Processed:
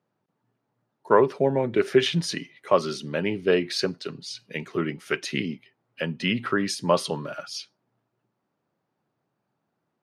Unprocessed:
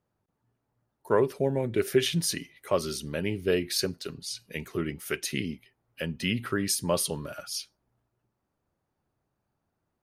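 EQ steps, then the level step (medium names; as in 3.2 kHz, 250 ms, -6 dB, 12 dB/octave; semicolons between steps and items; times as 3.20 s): high-pass 130 Hz 24 dB/octave; low-pass 4.9 kHz 12 dB/octave; dynamic bell 1 kHz, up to +6 dB, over -43 dBFS, Q 1.1; +3.5 dB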